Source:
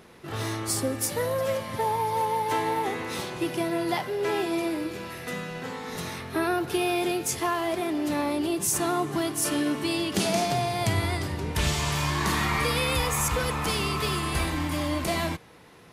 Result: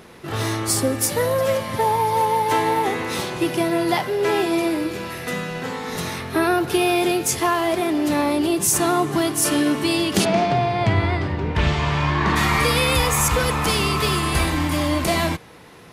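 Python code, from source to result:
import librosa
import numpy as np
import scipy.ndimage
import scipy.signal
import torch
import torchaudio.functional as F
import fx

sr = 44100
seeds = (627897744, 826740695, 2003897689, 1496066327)

y = fx.lowpass(x, sr, hz=2700.0, slope=12, at=(10.24, 12.35), fade=0.02)
y = y * 10.0 ** (7.0 / 20.0)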